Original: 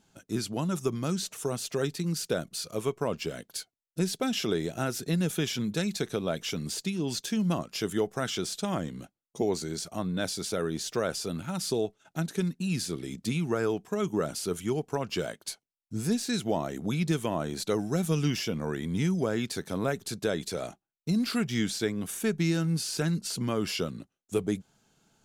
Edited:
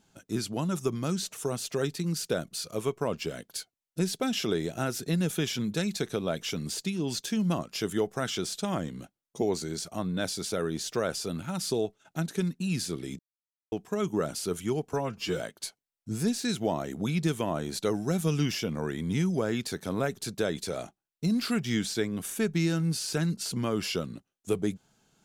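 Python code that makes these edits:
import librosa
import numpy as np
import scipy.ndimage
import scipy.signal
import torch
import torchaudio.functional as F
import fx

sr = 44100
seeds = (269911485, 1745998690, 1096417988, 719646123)

y = fx.edit(x, sr, fx.silence(start_s=13.19, length_s=0.53),
    fx.stretch_span(start_s=14.93, length_s=0.31, factor=1.5), tone=tone)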